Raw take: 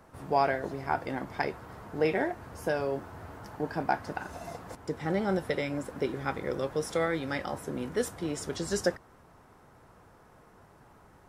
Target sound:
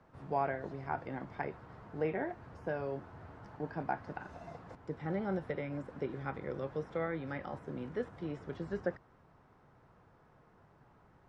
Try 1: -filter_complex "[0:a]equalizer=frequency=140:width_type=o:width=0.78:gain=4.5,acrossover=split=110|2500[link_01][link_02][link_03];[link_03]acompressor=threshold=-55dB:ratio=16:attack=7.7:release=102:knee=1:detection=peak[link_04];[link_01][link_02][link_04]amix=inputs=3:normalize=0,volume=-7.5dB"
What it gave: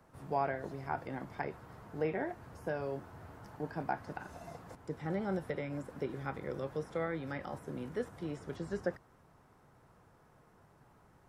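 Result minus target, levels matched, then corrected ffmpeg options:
4,000 Hz band +3.0 dB
-filter_complex "[0:a]equalizer=frequency=140:width_type=o:width=0.78:gain=4.5,acrossover=split=110|2500[link_01][link_02][link_03];[link_03]acompressor=threshold=-55dB:ratio=16:attack=7.7:release=102:knee=1:detection=peak,lowpass=4200[link_04];[link_01][link_02][link_04]amix=inputs=3:normalize=0,volume=-7.5dB"

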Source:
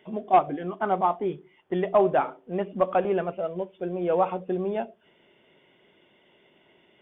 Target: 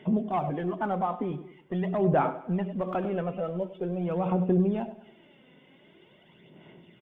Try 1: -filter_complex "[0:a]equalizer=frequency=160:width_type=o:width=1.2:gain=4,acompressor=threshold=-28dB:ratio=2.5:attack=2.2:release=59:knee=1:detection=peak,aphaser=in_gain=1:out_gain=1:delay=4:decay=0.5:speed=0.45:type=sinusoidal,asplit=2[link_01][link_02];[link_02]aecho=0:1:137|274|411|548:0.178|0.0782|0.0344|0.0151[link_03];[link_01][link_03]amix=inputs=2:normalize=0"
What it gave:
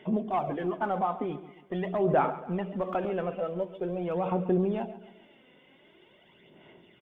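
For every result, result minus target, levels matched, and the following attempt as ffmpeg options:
echo 37 ms late; 125 Hz band −3.5 dB
-filter_complex "[0:a]equalizer=frequency=160:width_type=o:width=1.2:gain=4,acompressor=threshold=-28dB:ratio=2.5:attack=2.2:release=59:knee=1:detection=peak,aphaser=in_gain=1:out_gain=1:delay=4:decay=0.5:speed=0.45:type=sinusoidal,asplit=2[link_01][link_02];[link_02]aecho=0:1:100|200|300|400:0.178|0.0782|0.0344|0.0151[link_03];[link_01][link_03]amix=inputs=2:normalize=0"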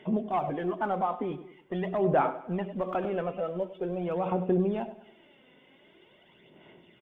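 125 Hz band −4.0 dB
-filter_complex "[0:a]equalizer=frequency=160:width_type=o:width=1.2:gain=12,acompressor=threshold=-28dB:ratio=2.5:attack=2.2:release=59:knee=1:detection=peak,aphaser=in_gain=1:out_gain=1:delay=4:decay=0.5:speed=0.45:type=sinusoidal,asplit=2[link_01][link_02];[link_02]aecho=0:1:100|200|300|400:0.178|0.0782|0.0344|0.0151[link_03];[link_01][link_03]amix=inputs=2:normalize=0"

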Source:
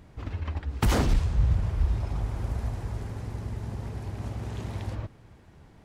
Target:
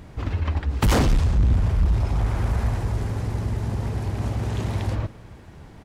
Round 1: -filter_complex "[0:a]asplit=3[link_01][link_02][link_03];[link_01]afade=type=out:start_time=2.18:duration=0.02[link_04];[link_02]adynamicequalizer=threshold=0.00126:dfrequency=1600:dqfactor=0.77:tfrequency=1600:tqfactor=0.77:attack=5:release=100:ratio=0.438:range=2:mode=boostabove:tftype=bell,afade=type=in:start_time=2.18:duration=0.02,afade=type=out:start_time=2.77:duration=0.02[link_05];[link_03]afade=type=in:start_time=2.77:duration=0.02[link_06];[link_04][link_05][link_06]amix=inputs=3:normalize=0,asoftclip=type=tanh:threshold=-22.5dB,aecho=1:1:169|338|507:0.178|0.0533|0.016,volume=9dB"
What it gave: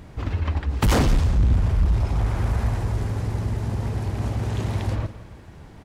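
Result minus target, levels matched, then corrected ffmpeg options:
echo-to-direct +8 dB
-filter_complex "[0:a]asplit=3[link_01][link_02][link_03];[link_01]afade=type=out:start_time=2.18:duration=0.02[link_04];[link_02]adynamicequalizer=threshold=0.00126:dfrequency=1600:dqfactor=0.77:tfrequency=1600:tqfactor=0.77:attack=5:release=100:ratio=0.438:range=2:mode=boostabove:tftype=bell,afade=type=in:start_time=2.18:duration=0.02,afade=type=out:start_time=2.77:duration=0.02[link_05];[link_03]afade=type=in:start_time=2.77:duration=0.02[link_06];[link_04][link_05][link_06]amix=inputs=3:normalize=0,asoftclip=type=tanh:threshold=-22.5dB,aecho=1:1:169|338:0.0708|0.0212,volume=9dB"

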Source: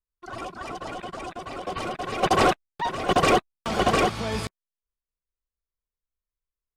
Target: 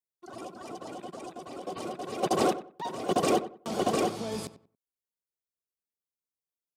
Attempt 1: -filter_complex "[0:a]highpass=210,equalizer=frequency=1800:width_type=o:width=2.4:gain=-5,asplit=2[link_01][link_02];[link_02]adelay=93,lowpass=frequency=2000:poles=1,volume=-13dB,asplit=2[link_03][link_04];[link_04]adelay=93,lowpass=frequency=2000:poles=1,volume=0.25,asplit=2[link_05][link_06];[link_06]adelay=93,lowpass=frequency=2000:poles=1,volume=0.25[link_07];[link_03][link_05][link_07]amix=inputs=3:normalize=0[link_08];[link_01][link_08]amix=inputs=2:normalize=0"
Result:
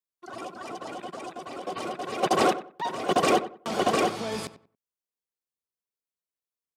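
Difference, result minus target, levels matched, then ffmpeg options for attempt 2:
2,000 Hz band +5.0 dB
-filter_complex "[0:a]highpass=210,equalizer=frequency=1800:width_type=o:width=2.4:gain=-14,asplit=2[link_01][link_02];[link_02]adelay=93,lowpass=frequency=2000:poles=1,volume=-13dB,asplit=2[link_03][link_04];[link_04]adelay=93,lowpass=frequency=2000:poles=1,volume=0.25,asplit=2[link_05][link_06];[link_06]adelay=93,lowpass=frequency=2000:poles=1,volume=0.25[link_07];[link_03][link_05][link_07]amix=inputs=3:normalize=0[link_08];[link_01][link_08]amix=inputs=2:normalize=0"

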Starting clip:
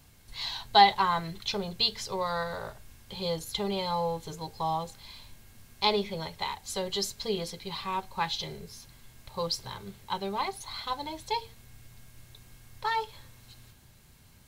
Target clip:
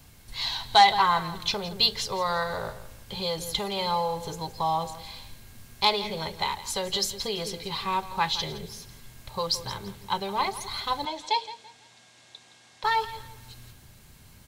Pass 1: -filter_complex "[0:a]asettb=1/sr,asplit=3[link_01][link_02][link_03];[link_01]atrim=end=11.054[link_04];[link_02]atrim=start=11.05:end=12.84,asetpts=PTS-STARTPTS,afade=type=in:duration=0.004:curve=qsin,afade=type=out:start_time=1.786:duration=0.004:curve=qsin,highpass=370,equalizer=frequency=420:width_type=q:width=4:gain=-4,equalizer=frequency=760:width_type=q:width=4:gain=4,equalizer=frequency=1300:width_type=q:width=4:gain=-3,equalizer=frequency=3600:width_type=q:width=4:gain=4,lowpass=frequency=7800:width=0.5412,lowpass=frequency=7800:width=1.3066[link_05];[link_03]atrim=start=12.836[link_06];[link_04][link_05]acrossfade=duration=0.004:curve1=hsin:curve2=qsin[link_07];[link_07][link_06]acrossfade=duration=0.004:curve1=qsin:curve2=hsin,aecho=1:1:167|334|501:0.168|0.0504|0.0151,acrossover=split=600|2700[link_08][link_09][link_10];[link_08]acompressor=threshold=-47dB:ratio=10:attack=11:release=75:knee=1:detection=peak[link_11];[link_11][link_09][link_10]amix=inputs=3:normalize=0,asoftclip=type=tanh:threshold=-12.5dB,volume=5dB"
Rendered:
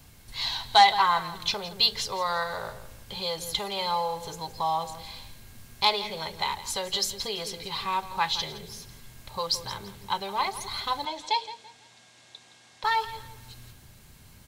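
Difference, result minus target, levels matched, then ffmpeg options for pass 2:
downward compressor: peak gain reduction +6.5 dB
-filter_complex "[0:a]asettb=1/sr,asplit=3[link_01][link_02][link_03];[link_01]atrim=end=11.054[link_04];[link_02]atrim=start=11.05:end=12.84,asetpts=PTS-STARTPTS,afade=type=in:duration=0.004:curve=qsin,afade=type=out:start_time=1.786:duration=0.004:curve=qsin,highpass=370,equalizer=frequency=420:width_type=q:width=4:gain=-4,equalizer=frequency=760:width_type=q:width=4:gain=4,equalizer=frequency=1300:width_type=q:width=4:gain=-3,equalizer=frequency=3600:width_type=q:width=4:gain=4,lowpass=frequency=7800:width=0.5412,lowpass=frequency=7800:width=1.3066[link_05];[link_03]atrim=start=12.836[link_06];[link_04][link_05]acrossfade=duration=0.004:curve1=hsin:curve2=qsin[link_07];[link_07][link_06]acrossfade=duration=0.004:curve1=qsin:curve2=hsin,aecho=1:1:167|334|501:0.168|0.0504|0.0151,acrossover=split=600|2700[link_08][link_09][link_10];[link_08]acompressor=threshold=-39.5dB:ratio=10:attack=11:release=75:knee=1:detection=peak[link_11];[link_11][link_09][link_10]amix=inputs=3:normalize=0,asoftclip=type=tanh:threshold=-12.5dB,volume=5dB"

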